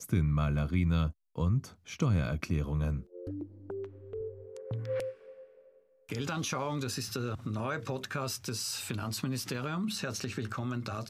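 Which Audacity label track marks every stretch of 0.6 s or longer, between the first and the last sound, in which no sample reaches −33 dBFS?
5.090000	6.120000	silence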